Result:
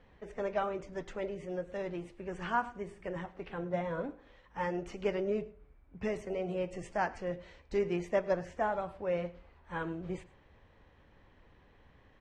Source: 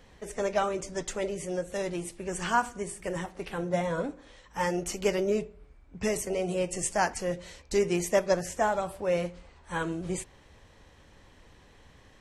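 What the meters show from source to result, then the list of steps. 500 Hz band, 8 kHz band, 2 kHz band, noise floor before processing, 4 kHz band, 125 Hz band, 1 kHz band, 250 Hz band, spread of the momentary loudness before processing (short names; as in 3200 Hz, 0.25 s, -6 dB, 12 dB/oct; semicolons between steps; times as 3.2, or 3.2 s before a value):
-5.5 dB, under -20 dB, -6.5 dB, -57 dBFS, -12.0 dB, -5.5 dB, -5.5 dB, -5.5 dB, 10 LU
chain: LPF 2600 Hz 12 dB/oct; echo 0.105 s -20.5 dB; gain -5.5 dB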